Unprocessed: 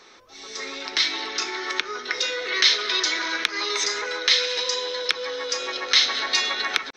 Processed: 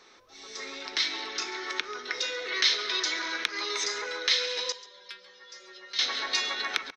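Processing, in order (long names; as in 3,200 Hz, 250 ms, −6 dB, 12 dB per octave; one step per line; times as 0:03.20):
0:04.72–0:05.99: stiff-string resonator 190 Hz, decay 0.28 s, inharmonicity 0.002
on a send: single-tap delay 137 ms −18 dB
on the sum: level −6 dB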